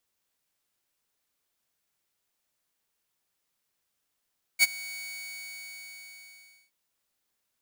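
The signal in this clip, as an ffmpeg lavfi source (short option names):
-f lavfi -i "aevalsrc='0.237*(2*mod(2240*t,1)-1)':d=2.12:s=44100,afade=t=in:d=0.041,afade=t=out:st=0.041:d=0.027:silence=0.0841,afade=t=out:st=0.35:d=1.77"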